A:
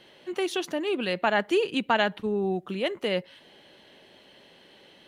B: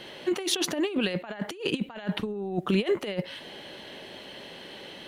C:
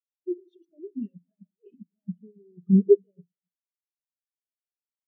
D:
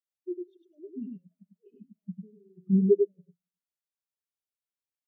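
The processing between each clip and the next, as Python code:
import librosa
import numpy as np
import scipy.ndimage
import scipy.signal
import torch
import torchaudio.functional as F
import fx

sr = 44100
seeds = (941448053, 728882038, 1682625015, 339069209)

y1 = fx.over_compress(x, sr, threshold_db=-32.0, ratio=-0.5)
y1 = F.gain(torch.from_numpy(y1), 4.5).numpy()
y2 = y1 + 10.0 ** (-14.0 / 20.0) * np.pad(y1, (int(272 * sr / 1000.0), 0))[:len(y1)]
y2 = fx.room_shoebox(y2, sr, seeds[0], volume_m3=3200.0, walls='furnished', distance_m=1.4)
y2 = fx.spectral_expand(y2, sr, expansion=4.0)
y2 = F.gain(torch.from_numpy(y2), 4.0).numpy()
y3 = y2 + 10.0 ** (-4.0 / 20.0) * np.pad(y2, (int(99 * sr / 1000.0), 0))[:len(y2)]
y3 = F.gain(torch.from_numpy(y3), -5.0).numpy()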